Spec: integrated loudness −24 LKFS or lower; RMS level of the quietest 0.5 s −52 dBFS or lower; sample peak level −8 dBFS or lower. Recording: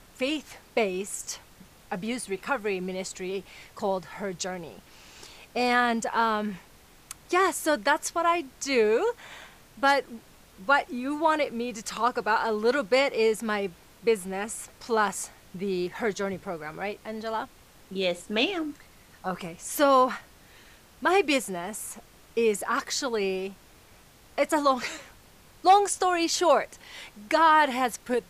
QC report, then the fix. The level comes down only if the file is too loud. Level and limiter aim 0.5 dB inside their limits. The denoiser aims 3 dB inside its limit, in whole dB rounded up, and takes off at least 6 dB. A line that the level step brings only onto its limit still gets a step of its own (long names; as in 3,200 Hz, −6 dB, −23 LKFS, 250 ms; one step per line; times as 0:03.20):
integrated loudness −26.5 LKFS: in spec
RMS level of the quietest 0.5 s −54 dBFS: in spec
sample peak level −9.0 dBFS: in spec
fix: no processing needed